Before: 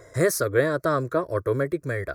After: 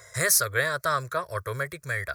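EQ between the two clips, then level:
high-pass filter 77 Hz
guitar amp tone stack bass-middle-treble 10-0-10
+9.0 dB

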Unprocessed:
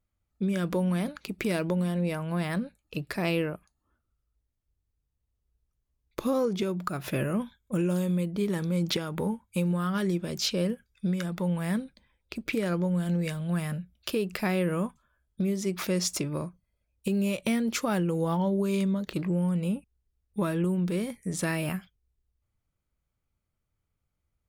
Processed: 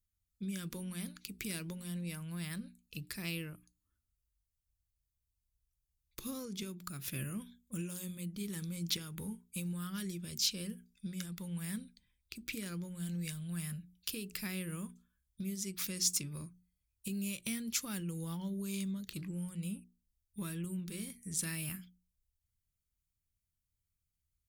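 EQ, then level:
guitar amp tone stack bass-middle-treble 6-0-2
high-shelf EQ 4,400 Hz +11 dB
mains-hum notches 60/120/180/240/300/360/420 Hz
+6.5 dB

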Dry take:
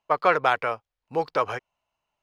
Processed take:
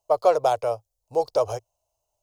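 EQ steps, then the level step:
drawn EQ curve 110 Hz 0 dB, 180 Hz −21 dB, 620 Hz 0 dB, 1,800 Hz −28 dB, 6,500 Hz +4 dB
+7.5 dB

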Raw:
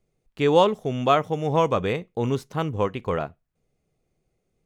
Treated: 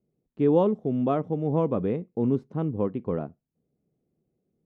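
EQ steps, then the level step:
resonant band-pass 240 Hz, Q 1.4
+4.0 dB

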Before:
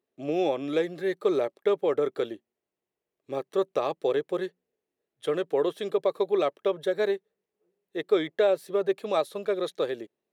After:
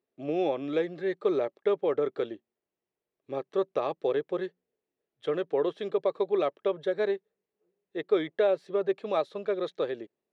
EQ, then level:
high-frequency loss of the air 140 metres
−1.5 dB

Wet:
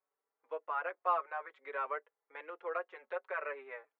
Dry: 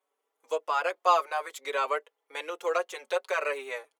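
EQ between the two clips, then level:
transistor ladder low-pass 2,200 Hz, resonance 35%
−3.5 dB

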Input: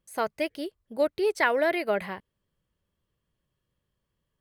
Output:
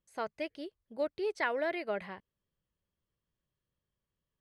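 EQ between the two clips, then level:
low-pass filter 6,500 Hz 12 dB per octave
−8.5 dB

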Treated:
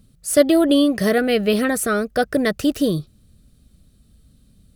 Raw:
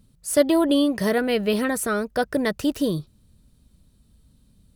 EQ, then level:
Butterworth band-reject 940 Hz, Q 4.1
+4.0 dB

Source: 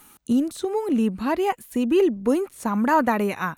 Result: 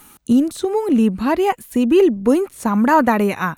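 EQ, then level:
low-shelf EQ 230 Hz +3 dB
+5.0 dB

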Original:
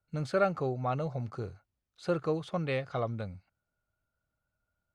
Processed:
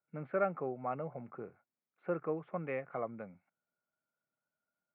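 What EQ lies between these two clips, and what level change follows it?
high-pass filter 170 Hz 24 dB per octave
elliptic low-pass filter 2,300 Hz, stop band 60 dB
−4.5 dB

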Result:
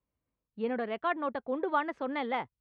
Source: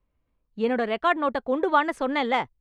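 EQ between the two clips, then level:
high-pass filter 75 Hz 12 dB per octave
high-frequency loss of the air 200 metres
−7.5 dB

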